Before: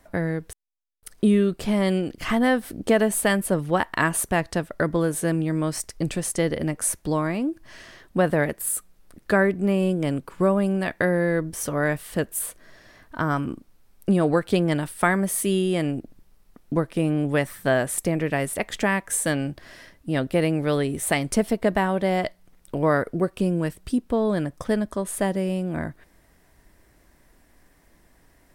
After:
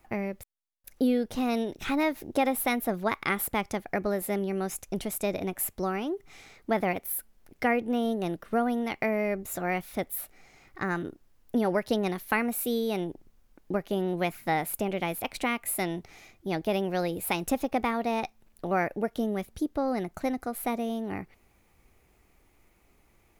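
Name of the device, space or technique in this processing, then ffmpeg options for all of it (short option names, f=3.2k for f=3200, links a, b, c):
nightcore: -af "asetrate=53802,aresample=44100,volume=-6dB"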